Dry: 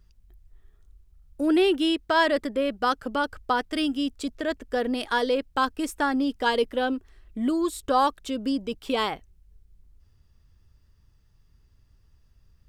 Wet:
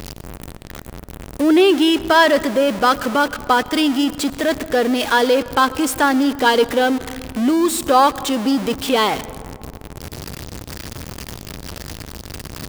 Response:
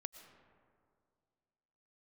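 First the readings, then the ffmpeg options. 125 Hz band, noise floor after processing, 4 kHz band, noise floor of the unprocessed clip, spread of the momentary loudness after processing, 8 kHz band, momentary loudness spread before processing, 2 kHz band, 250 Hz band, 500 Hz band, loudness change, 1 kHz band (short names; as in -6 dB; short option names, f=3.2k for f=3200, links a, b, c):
n/a, -36 dBFS, +9.5 dB, -61 dBFS, 21 LU, +16.0 dB, 8 LU, +9.5 dB, +9.0 dB, +9.0 dB, +9.0 dB, +9.0 dB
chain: -filter_complex "[0:a]aeval=exprs='val(0)+0.5*0.0398*sgn(val(0))':c=same,highpass=f=220:p=1,asplit=2[a][b];[1:a]atrim=start_sample=2205,lowshelf=f=170:g=9[c];[b][c]afir=irnorm=-1:irlink=0,volume=0dB[d];[a][d]amix=inputs=2:normalize=0,volume=3.5dB"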